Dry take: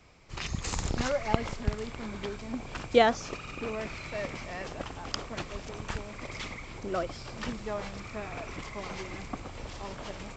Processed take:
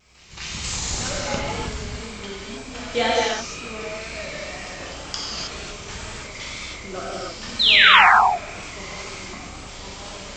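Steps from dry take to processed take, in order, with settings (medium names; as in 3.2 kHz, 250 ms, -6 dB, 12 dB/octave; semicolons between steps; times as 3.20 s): treble shelf 2.5 kHz +12 dB; pre-echo 223 ms -19 dB; painted sound fall, 7.59–8.06 s, 680–4200 Hz -13 dBFS; gated-style reverb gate 340 ms flat, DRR -7 dB; vibrato 2 Hz 45 cents; trim -6 dB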